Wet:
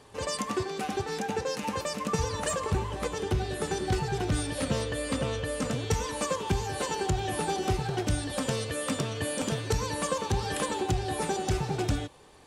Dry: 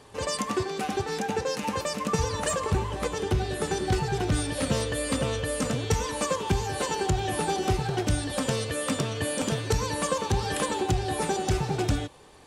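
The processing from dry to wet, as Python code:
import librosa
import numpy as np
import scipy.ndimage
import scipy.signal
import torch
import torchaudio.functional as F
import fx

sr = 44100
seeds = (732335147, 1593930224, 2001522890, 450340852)

y = fx.high_shelf(x, sr, hz=7700.0, db=-6.5, at=(4.64, 5.71))
y = y * 10.0 ** (-2.5 / 20.0)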